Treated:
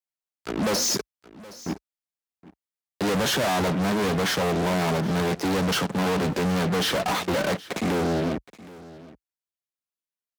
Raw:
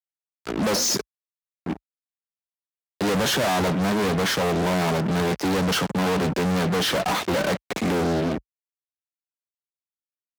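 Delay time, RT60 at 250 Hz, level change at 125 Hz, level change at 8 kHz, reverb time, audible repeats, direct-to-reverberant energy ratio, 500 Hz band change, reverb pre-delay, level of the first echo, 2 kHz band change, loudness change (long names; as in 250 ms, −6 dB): 770 ms, no reverb audible, −1.5 dB, −1.5 dB, no reverb audible, 1, no reverb audible, −1.5 dB, no reverb audible, −19.5 dB, −1.5 dB, −1.5 dB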